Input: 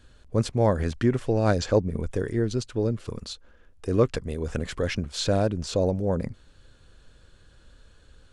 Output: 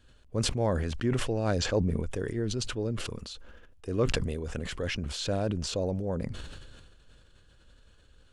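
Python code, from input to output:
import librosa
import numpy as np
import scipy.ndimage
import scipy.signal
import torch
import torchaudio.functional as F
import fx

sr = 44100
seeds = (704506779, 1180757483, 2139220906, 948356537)

y = fx.peak_eq(x, sr, hz=2900.0, db=4.5, octaves=0.37)
y = fx.sustainer(y, sr, db_per_s=31.0)
y = F.gain(torch.from_numpy(y), -7.0).numpy()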